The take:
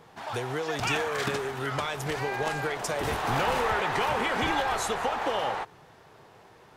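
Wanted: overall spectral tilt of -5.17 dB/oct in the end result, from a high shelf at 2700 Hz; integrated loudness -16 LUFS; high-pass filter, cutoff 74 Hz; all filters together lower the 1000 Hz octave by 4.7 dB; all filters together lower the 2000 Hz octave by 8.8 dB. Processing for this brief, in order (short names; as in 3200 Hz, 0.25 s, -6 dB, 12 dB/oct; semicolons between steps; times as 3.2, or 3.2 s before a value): HPF 74 Hz; bell 1000 Hz -3.5 dB; bell 2000 Hz -7.5 dB; high shelf 2700 Hz -7 dB; gain +16.5 dB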